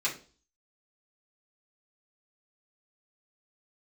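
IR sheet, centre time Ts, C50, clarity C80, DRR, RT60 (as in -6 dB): 19 ms, 10.5 dB, 17.0 dB, -6.5 dB, 0.40 s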